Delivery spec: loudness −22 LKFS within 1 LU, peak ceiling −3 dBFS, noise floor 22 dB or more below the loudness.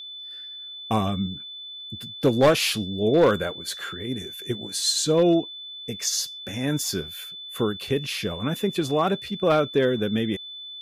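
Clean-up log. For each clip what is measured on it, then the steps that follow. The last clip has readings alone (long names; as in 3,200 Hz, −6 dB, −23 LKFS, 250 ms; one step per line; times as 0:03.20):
share of clipped samples 0.3%; peaks flattened at −11.5 dBFS; interfering tone 3,500 Hz; level of the tone −36 dBFS; integrated loudness −24.0 LKFS; sample peak −11.5 dBFS; target loudness −22.0 LKFS
→ clipped peaks rebuilt −11.5 dBFS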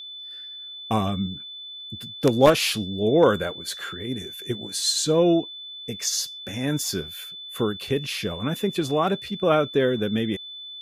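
share of clipped samples 0.0%; interfering tone 3,500 Hz; level of the tone −36 dBFS
→ notch filter 3,500 Hz, Q 30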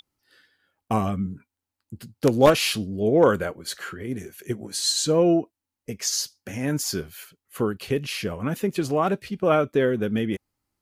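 interfering tone none found; integrated loudness −24.0 LKFS; sample peak −2.5 dBFS; target loudness −22.0 LKFS
→ level +2 dB
brickwall limiter −3 dBFS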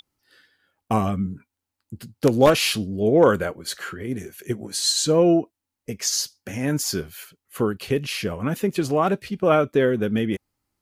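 integrated loudness −22.5 LKFS; sample peak −3.0 dBFS; background noise floor −85 dBFS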